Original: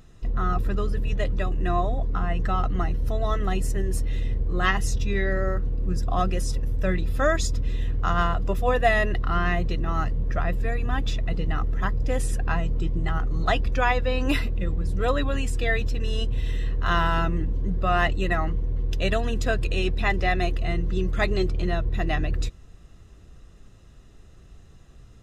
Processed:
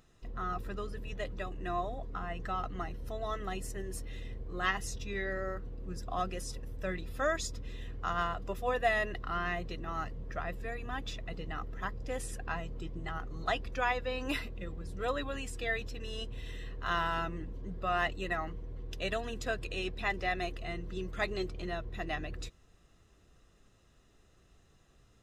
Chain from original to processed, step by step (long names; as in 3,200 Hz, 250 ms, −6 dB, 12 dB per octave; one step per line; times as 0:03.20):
low-shelf EQ 220 Hz −10 dB
level −7.5 dB